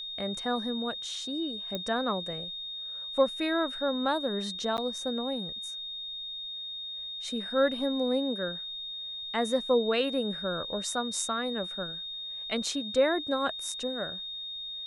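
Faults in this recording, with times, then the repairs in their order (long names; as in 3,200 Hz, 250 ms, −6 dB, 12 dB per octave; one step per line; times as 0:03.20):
whistle 3,700 Hz −36 dBFS
0:01.75: click −19 dBFS
0:04.77–0:04.78: drop-out 9.6 ms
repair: click removal
notch filter 3,700 Hz, Q 30
repair the gap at 0:04.77, 9.6 ms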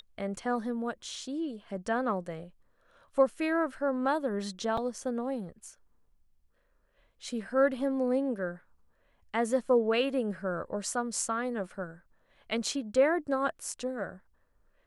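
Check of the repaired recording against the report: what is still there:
none of them is left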